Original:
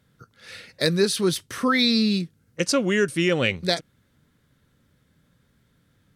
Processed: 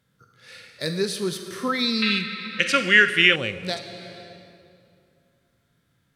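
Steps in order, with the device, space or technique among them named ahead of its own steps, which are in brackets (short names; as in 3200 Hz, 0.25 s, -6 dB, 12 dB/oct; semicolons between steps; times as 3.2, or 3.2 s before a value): low shelf 440 Hz -5 dB; compressed reverb return (on a send at -4 dB: reverb RT60 2.4 s, pre-delay 31 ms + compressor 5:1, threshold -28 dBFS, peak gain reduction 8.5 dB); on the sum: harmonic-percussive split harmonic +6 dB; 2.02–3.36 band shelf 2200 Hz +15.5 dB; gain -7 dB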